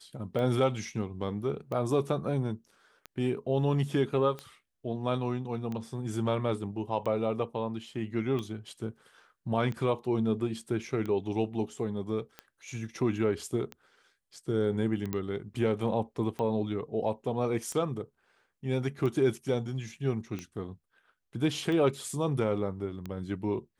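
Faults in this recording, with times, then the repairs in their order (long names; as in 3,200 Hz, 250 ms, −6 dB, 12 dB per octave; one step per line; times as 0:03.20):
scratch tick 45 rpm −24 dBFS
0:15.13: click −18 dBFS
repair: click removal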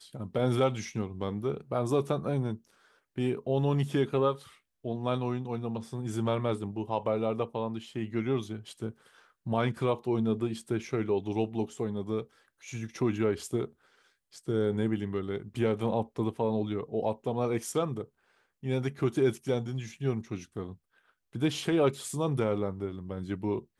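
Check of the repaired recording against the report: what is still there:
none of them is left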